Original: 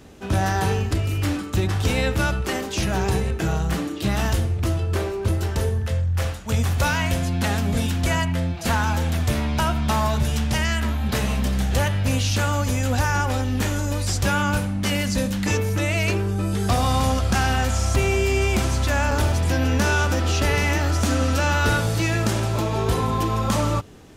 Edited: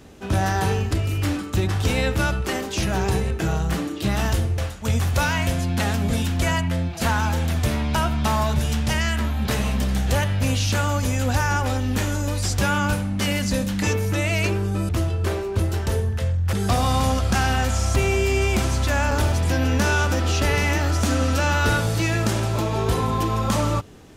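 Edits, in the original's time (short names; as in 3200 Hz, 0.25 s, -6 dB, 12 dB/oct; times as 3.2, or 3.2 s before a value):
4.58–6.22 move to 16.53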